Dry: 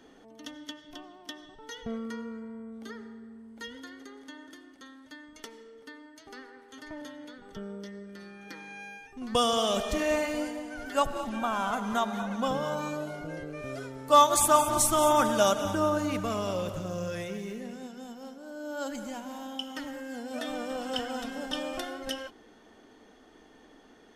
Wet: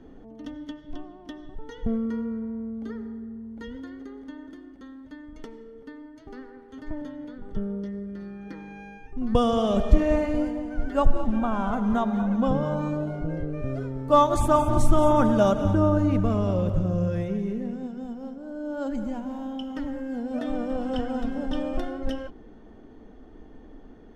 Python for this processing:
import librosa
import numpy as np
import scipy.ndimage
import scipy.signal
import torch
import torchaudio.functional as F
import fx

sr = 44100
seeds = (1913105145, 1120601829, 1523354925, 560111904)

y = fx.tilt_eq(x, sr, slope=-4.5)